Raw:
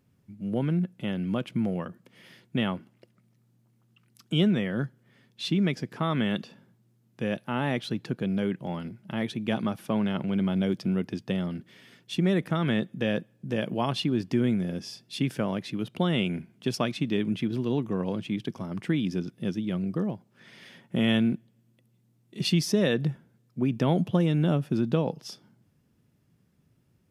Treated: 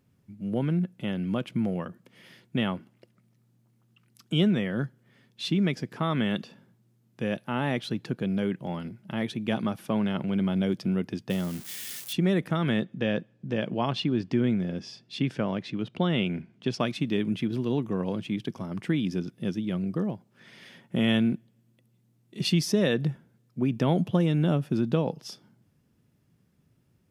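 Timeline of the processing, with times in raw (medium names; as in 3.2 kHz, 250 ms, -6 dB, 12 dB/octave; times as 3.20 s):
11.30–12.13 s: zero-crossing glitches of -28.5 dBFS
12.82–16.80 s: low-pass 5.2 kHz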